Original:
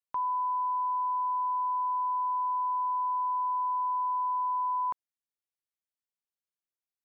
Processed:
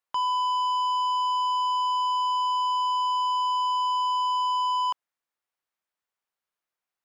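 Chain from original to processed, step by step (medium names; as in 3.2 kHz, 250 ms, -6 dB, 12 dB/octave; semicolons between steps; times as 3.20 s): peaking EQ 1.1 kHz +12 dB 2.9 oct; saturation -24 dBFS, distortion -12 dB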